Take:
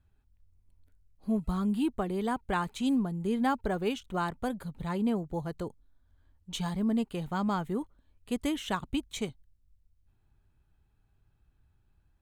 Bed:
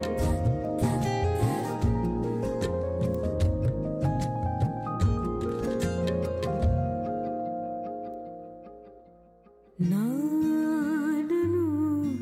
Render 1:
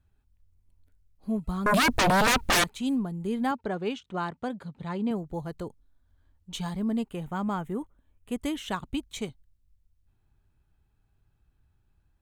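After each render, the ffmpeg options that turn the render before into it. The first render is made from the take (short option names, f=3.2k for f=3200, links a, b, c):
-filter_complex "[0:a]asettb=1/sr,asplit=3[a][b][c];[a]atrim=end=1.664[d];[b]atrim=start=1.66:end=2.64,asetpts=PTS-STARTPTS,afade=t=in:d=0.004:c=qsin,afade=t=out:st=0.976:d=0.004:c=qsin,aeval=exprs='0.119*sin(PI/2*7.94*val(0)/0.119)':c=same[e];[c]atrim=start=2.636[f];[d][e]acrossfade=d=0.004:c1=hsin:c2=qsin[g];[g][f]acrossfade=d=0.004:c1=qsin:c2=hsin,asettb=1/sr,asplit=3[h][i][j];[h]atrim=end=3.514[k];[i]atrim=start=3.51:end=5.11,asetpts=PTS-STARTPTS,afade=t=in:d=0.004:c=qsin,afade=t=out:st=1.596:d=0.004:c=qsin,highpass=110,lowpass=5.7k[l];[j]atrim=start=5.106[m];[k][l]acrossfade=d=0.004:c1=hsin:c2=qsin[n];[n][m]acrossfade=d=0.004:c1=qsin:c2=hsin,asettb=1/sr,asplit=3[o][p][q];[o]atrim=end=7.084[r];[p]atrim=start=7.08:end=8.44,asetpts=PTS-STARTPTS,afade=t=in:d=0.004:c=qsin,afade=t=out:st=1.356:d=0.004:c=qsin,equalizer=f=4.4k:w=2.6:g=-11[s];[q]atrim=start=8.436[t];[r][s]acrossfade=d=0.004:c1=hsin:c2=qsin[u];[u][t]acrossfade=d=0.004:c1=qsin:c2=hsin"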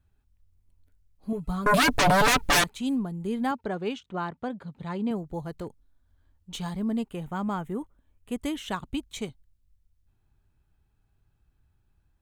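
-filter_complex "[0:a]asettb=1/sr,asplit=3[a][b][c];[a]atrim=end=1.324[d];[b]atrim=start=1.32:end=2.61,asetpts=PTS-STARTPTS,afade=t=in:d=0.004:c=qsin,afade=t=out:st=1.286:d=0.004:c=qsin,aecho=1:1:6.9:0.65,atrim=end_sample=56889[e];[c]atrim=start=2.606[f];[d][e]acrossfade=d=0.004:c1=hsin:c2=qsin[g];[g][f]acrossfade=d=0.004:c1=qsin:c2=hsin,asettb=1/sr,asplit=3[h][i][j];[h]atrim=end=4.064[k];[i]atrim=start=4.06:end=4.68,asetpts=PTS-STARTPTS,afade=t=in:d=0.004:c=qsin,afade=t=out:st=0.616:d=0.004:c=qsin,lowpass=f=3.5k:p=1[l];[j]atrim=start=4.676[m];[k][l]acrossfade=d=0.004:c1=hsin:c2=qsin[n];[n][m]acrossfade=d=0.004:c1=qsin:c2=hsin,asettb=1/sr,asplit=3[o][p][q];[o]atrim=end=5.534[r];[p]atrim=start=5.53:end=6.63,asetpts=PTS-STARTPTS,afade=t=in:d=0.004:c=qsin,afade=t=out:st=1.096:d=0.004:c=qsin,aeval=exprs='clip(val(0),-1,0.0266)':c=same[s];[q]atrim=start=6.626[t];[r][s]acrossfade=d=0.004:c1=hsin:c2=qsin[u];[u][t]acrossfade=d=0.004:c1=qsin:c2=hsin"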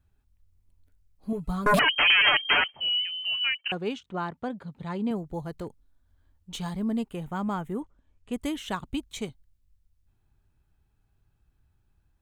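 -filter_complex "[0:a]asettb=1/sr,asplit=3[a][b][c];[a]atrim=end=1.794[d];[b]atrim=start=1.79:end=3.72,asetpts=PTS-STARTPTS,afade=t=in:d=0.004:c=qsin,afade=t=out:st=1.926:d=0.004:c=qsin,lowpass=f=2.7k:t=q:w=0.5098,lowpass=f=2.7k:t=q:w=0.6013,lowpass=f=2.7k:t=q:w=0.9,lowpass=f=2.7k:t=q:w=2.563,afreqshift=-3200[e];[c]atrim=start=3.716[f];[d][e]acrossfade=d=0.004:c1=hsin:c2=qsin[g];[g][f]acrossfade=d=0.004:c1=qsin:c2=hsin,asplit=3[h][i][j];[h]afade=t=out:st=7.8:d=0.02[k];[i]lowpass=f=7.9k:w=0.5412,lowpass=f=7.9k:w=1.3066,afade=t=in:st=7.8:d=0.02,afade=t=out:st=8.32:d=0.02[l];[j]afade=t=in:st=8.32:d=0.02[m];[k][l][m]amix=inputs=3:normalize=0"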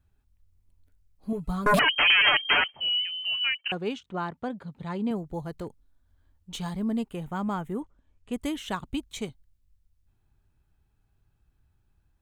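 -af anull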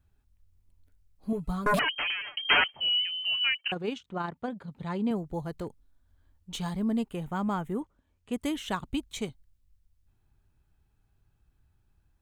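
-filter_complex "[0:a]asettb=1/sr,asplit=3[a][b][c];[a]atrim=end=3.694[d];[b]atrim=start=3.69:end=4.71,asetpts=PTS-STARTPTS,afade=t=in:d=0.004:c=qsin,afade=t=out:st=1.016:d=0.004:c=qsin,tremolo=f=25:d=0.4[e];[c]atrim=start=4.706[f];[d][e]acrossfade=d=0.004:c1=hsin:c2=qsin[g];[g][f]acrossfade=d=0.004:c1=qsin:c2=hsin,asettb=1/sr,asplit=3[h][i][j];[h]atrim=end=7.814[k];[i]atrim=start=7.81:end=8.51,asetpts=PTS-STARTPTS,afade=t=in:d=0.004:c=qsin,afade=t=out:st=0.696:d=0.004:c=qsin,highpass=f=77:p=1[l];[j]atrim=start=8.506[m];[k][l]acrossfade=d=0.004:c1=hsin:c2=qsin[n];[n][m]acrossfade=d=0.004:c1=qsin:c2=hsin,asplit=2[o][p];[o]atrim=end=2.37,asetpts=PTS-STARTPTS,afade=t=out:st=1.34:d=1.03[q];[p]atrim=start=2.37,asetpts=PTS-STARTPTS,afade=t=in:d=0.004:c=hsin[r];[q][r]concat=n=2:v=0:a=1"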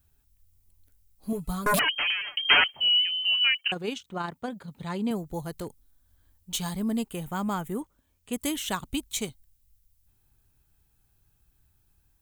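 -af "aemphasis=mode=production:type=75kf"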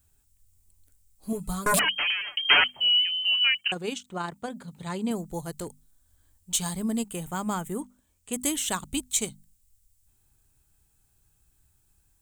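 -af "equalizer=f=8k:t=o:w=0.66:g=10,bandreject=f=50:t=h:w=6,bandreject=f=100:t=h:w=6,bandreject=f=150:t=h:w=6,bandreject=f=200:t=h:w=6,bandreject=f=250:t=h:w=6"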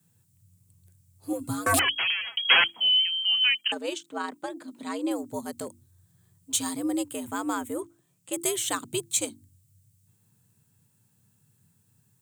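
-af "afreqshift=89"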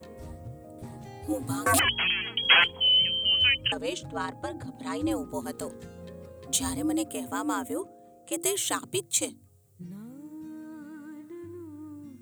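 -filter_complex "[1:a]volume=-16.5dB[a];[0:a][a]amix=inputs=2:normalize=0"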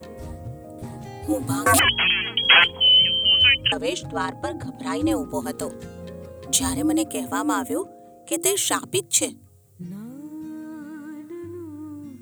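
-af "volume=6.5dB,alimiter=limit=-3dB:level=0:latency=1"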